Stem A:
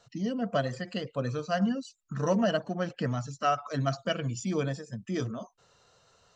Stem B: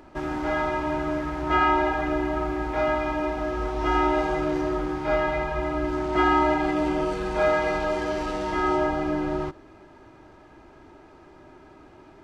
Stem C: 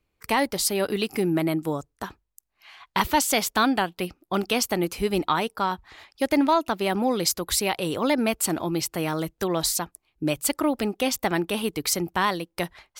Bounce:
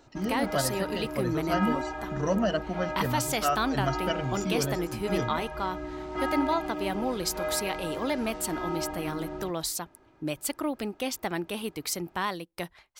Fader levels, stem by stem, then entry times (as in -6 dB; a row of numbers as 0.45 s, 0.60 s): -0.5 dB, -10.5 dB, -7.0 dB; 0.00 s, 0.00 s, 0.00 s